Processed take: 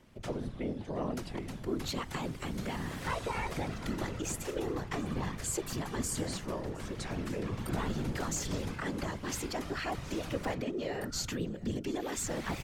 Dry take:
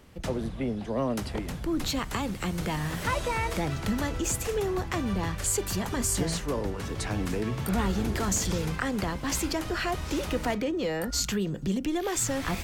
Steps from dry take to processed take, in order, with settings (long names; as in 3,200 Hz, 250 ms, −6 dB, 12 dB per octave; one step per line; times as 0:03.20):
high-shelf EQ 10,000 Hz −5.5 dB
random phases in short frames
single-tap delay 716 ms −22 dB
level −6.5 dB